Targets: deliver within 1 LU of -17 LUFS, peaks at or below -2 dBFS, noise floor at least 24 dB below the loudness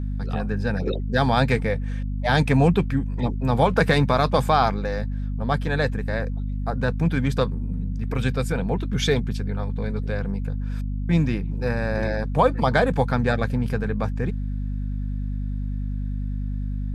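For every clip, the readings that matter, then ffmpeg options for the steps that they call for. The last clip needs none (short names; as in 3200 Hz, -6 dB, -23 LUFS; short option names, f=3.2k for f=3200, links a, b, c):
hum 50 Hz; harmonics up to 250 Hz; hum level -24 dBFS; loudness -24.0 LUFS; peak -5.0 dBFS; loudness target -17.0 LUFS
-> -af "bandreject=f=50:t=h:w=6,bandreject=f=100:t=h:w=6,bandreject=f=150:t=h:w=6,bandreject=f=200:t=h:w=6,bandreject=f=250:t=h:w=6"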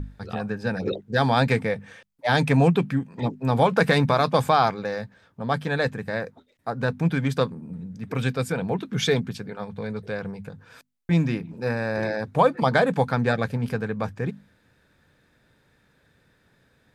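hum none; loudness -24.5 LUFS; peak -6.0 dBFS; loudness target -17.0 LUFS
-> -af "volume=7.5dB,alimiter=limit=-2dB:level=0:latency=1"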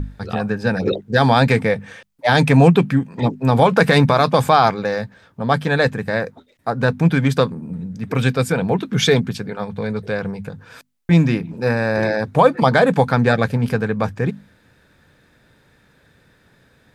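loudness -17.5 LUFS; peak -2.0 dBFS; noise floor -57 dBFS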